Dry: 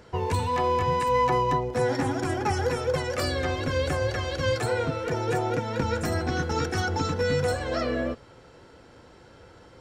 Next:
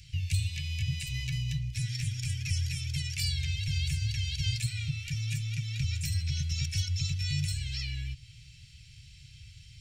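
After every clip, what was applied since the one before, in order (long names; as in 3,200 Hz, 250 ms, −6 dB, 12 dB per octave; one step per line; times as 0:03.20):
Chebyshev band-stop filter 140–2,400 Hz, order 4
in parallel at +2.5 dB: downward compressor, threshold −43 dBFS, peak gain reduction 17.5 dB
on the sum: level −1 dB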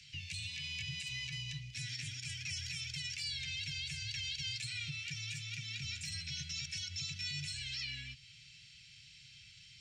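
three-way crossover with the lows and the highs turned down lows −22 dB, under 200 Hz, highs −21 dB, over 7,800 Hz
brickwall limiter −32.5 dBFS, peak gain reduction 9 dB
level +1 dB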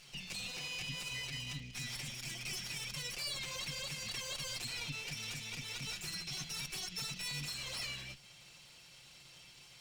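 lower of the sound and its delayed copy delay 5.6 ms
level +1.5 dB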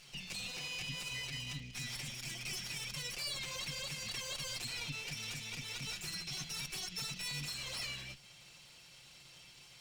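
no processing that can be heard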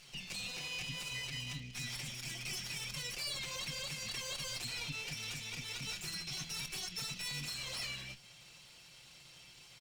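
double-tracking delay 25 ms −13 dB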